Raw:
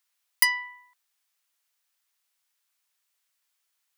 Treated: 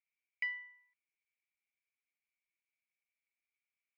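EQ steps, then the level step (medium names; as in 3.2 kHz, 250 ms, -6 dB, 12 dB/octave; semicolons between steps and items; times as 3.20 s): band-pass filter 2.3 kHz, Q 18; distance through air 440 m; tilt EQ +4 dB/octave; +3.0 dB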